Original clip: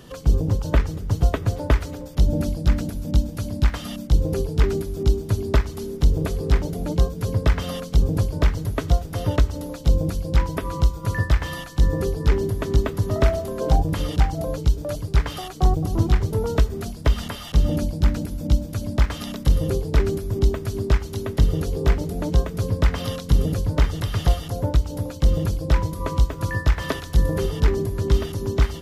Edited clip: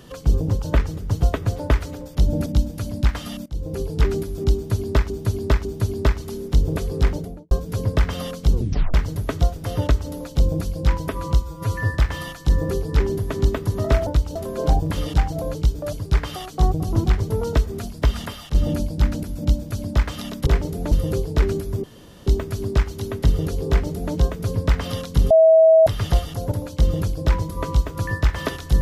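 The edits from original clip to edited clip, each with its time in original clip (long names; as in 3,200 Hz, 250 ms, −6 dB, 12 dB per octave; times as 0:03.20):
0:02.46–0:03.05: remove
0:04.05–0:04.54: fade in, from −20 dB
0:05.14–0:05.69: repeat, 3 plays
0:06.60–0:07.00: fade out and dull
0:08.02: tape stop 0.41 s
0:10.91–0:11.26: time-stretch 1.5×
0:17.32–0:17.57: fade out, to −6.5 dB
0:20.41: splice in room tone 0.43 s
0:21.83–0:22.28: duplicate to 0:19.49
0:23.45–0:24.01: beep over 645 Hz −8.5 dBFS
0:24.66–0:24.95: move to 0:13.38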